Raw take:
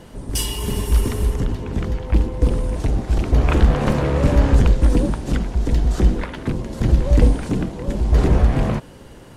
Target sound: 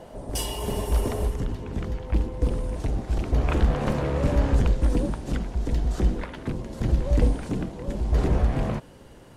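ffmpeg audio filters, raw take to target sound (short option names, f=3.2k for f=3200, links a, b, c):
-af "asetnsamples=n=441:p=0,asendcmd='1.28 equalizer g 2',equalizer=f=650:t=o:w=0.97:g=14,volume=-7dB"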